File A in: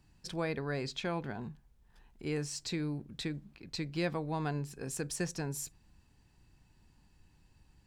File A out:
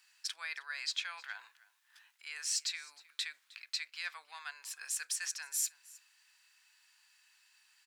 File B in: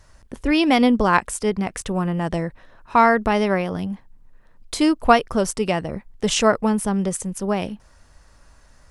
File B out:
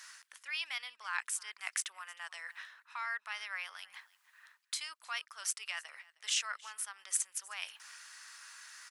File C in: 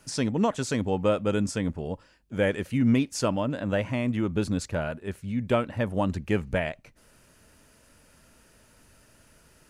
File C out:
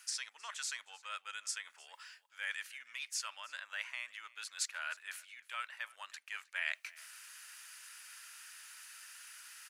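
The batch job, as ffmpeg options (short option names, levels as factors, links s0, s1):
-af "alimiter=limit=0.282:level=0:latency=1:release=426,areverse,acompressor=threshold=0.0141:ratio=8,areverse,highpass=f=1400:w=0.5412,highpass=f=1400:w=1.3066,aecho=1:1:312:0.0794,volume=2.82"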